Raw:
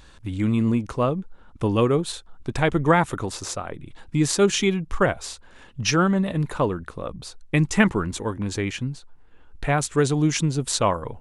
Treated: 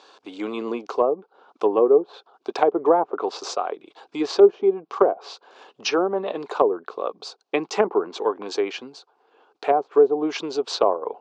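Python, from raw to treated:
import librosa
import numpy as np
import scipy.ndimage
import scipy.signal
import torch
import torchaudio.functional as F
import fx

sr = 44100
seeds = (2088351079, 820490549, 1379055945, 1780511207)

y = fx.cabinet(x, sr, low_hz=350.0, low_slope=24, high_hz=6200.0, hz=(420.0, 750.0, 1100.0, 1900.0, 4600.0), db=(8, 9, 5, -9, 4))
y = fx.env_lowpass_down(y, sr, base_hz=620.0, full_db=-15.5)
y = F.gain(torch.from_numpy(y), 1.5).numpy()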